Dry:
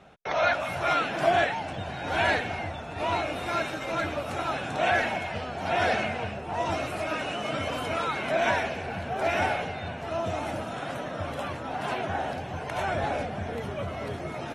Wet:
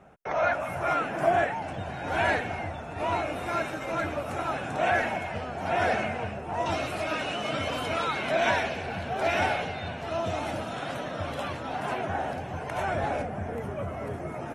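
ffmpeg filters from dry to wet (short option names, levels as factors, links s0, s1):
-af "asetnsamples=n=441:p=0,asendcmd='1.62 equalizer g -7;6.66 equalizer g 2.5;11.8 equalizer g -5.5;13.22 equalizer g -14.5',equalizer=f=3900:t=o:w=1.1:g=-14"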